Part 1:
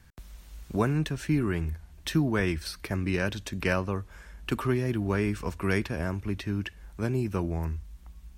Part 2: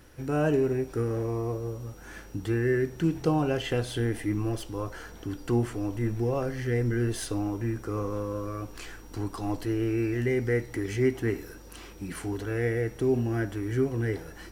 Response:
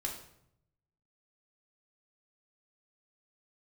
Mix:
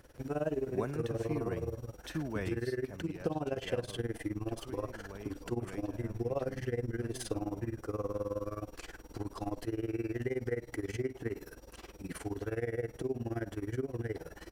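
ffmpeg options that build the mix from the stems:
-filter_complex "[0:a]volume=-13dB,afade=t=out:st=2.41:d=0.68:silence=0.334965[a];[1:a]acompressor=threshold=-28dB:ratio=6,tremolo=f=19:d=0.9,volume=-2.5dB[b];[a][b]amix=inputs=2:normalize=0,equalizer=f=570:w=1.5:g=6.5"

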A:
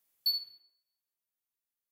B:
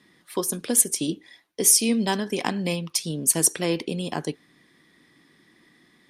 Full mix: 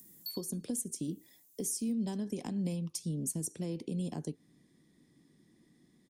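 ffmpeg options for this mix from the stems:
-filter_complex "[0:a]acompressor=mode=upward:threshold=-43dB:ratio=2.5,volume=-9dB[a];[1:a]lowpass=f=1.5k:p=1,acompressor=threshold=-29dB:ratio=2.5,volume=-1.5dB[b];[a][b]amix=inputs=2:normalize=0,firequalizer=gain_entry='entry(200,0);entry(340,-5);entry(1300,-16);entry(7000,10)':delay=0.05:min_phase=1,acrossover=split=310[c][d];[d]acompressor=threshold=-41dB:ratio=2[e];[c][e]amix=inputs=2:normalize=0"

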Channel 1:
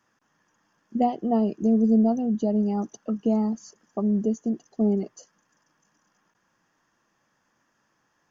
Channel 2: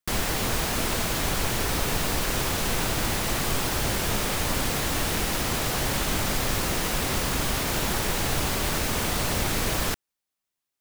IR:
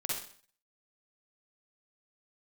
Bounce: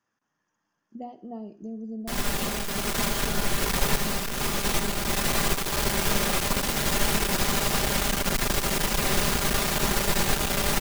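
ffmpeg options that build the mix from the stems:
-filter_complex "[0:a]acompressor=threshold=-35dB:ratio=1.5,volume=-11dB,asplit=3[a][b][c];[b]volume=-14.5dB[d];[1:a]aecho=1:1:5:0.58,adelay=2000,volume=-1dB,asplit=2[e][f];[f]volume=-7dB[g];[c]apad=whole_len=564872[h];[e][h]sidechaincompress=threshold=-47dB:ratio=8:attack=16:release=245[i];[2:a]atrim=start_sample=2205[j];[d][g]amix=inputs=2:normalize=0[k];[k][j]afir=irnorm=-1:irlink=0[l];[a][i][l]amix=inputs=3:normalize=0,aeval=exprs='clip(val(0),-1,0.0398)':c=same"

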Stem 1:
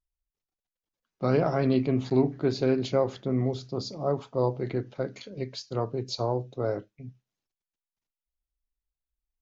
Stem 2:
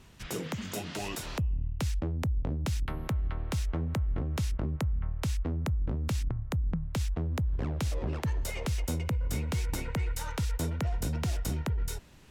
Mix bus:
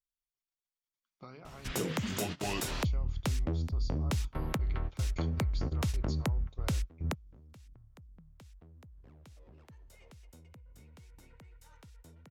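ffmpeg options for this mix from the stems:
-filter_complex "[0:a]tiltshelf=f=930:g=-6,aecho=1:1:0.9:0.36,acompressor=threshold=-35dB:ratio=20,volume=-11dB,asplit=2[a][b];[1:a]acompressor=threshold=-31dB:ratio=6,adelay=1450,volume=3dB[c];[b]apad=whole_len=606481[d];[c][d]sidechaingate=range=-24dB:threshold=-57dB:ratio=16:detection=peak[e];[a][e]amix=inputs=2:normalize=0"

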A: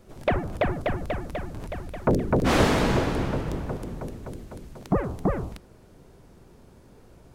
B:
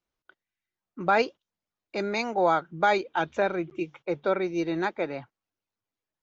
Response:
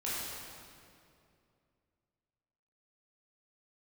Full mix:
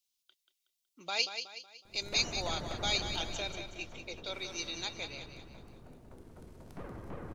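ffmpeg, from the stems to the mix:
-filter_complex "[0:a]acompressor=threshold=-27dB:ratio=6,aeval=exprs='(tanh(44.7*val(0)+0.75)-tanh(0.75))/44.7':c=same,adelay=1850,volume=1.5dB,afade=t=out:st=3.06:d=0.57:silence=0.237137,afade=t=in:st=6.01:d=0.54:silence=0.334965,asplit=3[a][b][c];[b]volume=-4dB[d];[c]volume=-5.5dB[e];[1:a]acrossover=split=390|3000[f][g][h];[f]acompressor=threshold=-40dB:ratio=6[i];[i][g][h]amix=inputs=3:normalize=0,aexciter=amount=15.4:drive=6:freq=2.6k,volume=-17dB,asplit=2[j][k];[k]volume=-8.5dB[l];[2:a]atrim=start_sample=2205[m];[d][m]afir=irnorm=-1:irlink=0[n];[e][l]amix=inputs=2:normalize=0,aecho=0:1:185|370|555|740|925|1110:1|0.42|0.176|0.0741|0.0311|0.0131[o];[a][j][n][o]amix=inputs=4:normalize=0"

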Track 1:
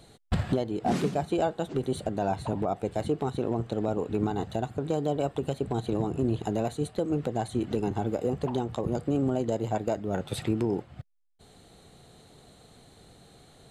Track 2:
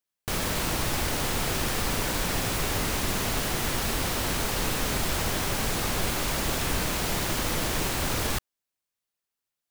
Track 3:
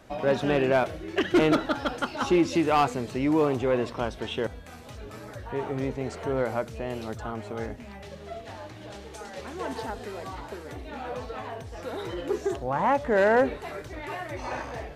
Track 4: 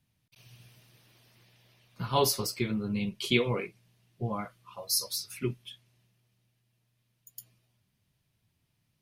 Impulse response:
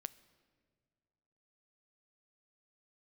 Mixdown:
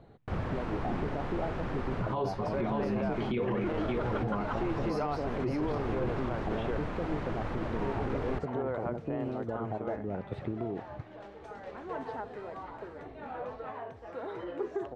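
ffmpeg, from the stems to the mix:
-filter_complex "[0:a]acompressor=threshold=-31dB:ratio=6,volume=-0.5dB[a];[1:a]volume=-5.5dB[b];[2:a]aemphasis=mode=production:type=bsi,acompressor=threshold=-26dB:ratio=6,adelay=2300,volume=-2.5dB[c];[3:a]highpass=100,volume=1.5dB,asplit=3[d][e][f];[e]volume=-5dB[g];[f]apad=whole_len=428059[h];[b][h]sidechaincompress=threshold=-32dB:ratio=8:attack=8:release=287[i];[g]aecho=0:1:572:1[j];[a][i][c][d][j]amix=inputs=5:normalize=0,lowpass=1.4k,alimiter=limit=-23.5dB:level=0:latency=1:release=16"

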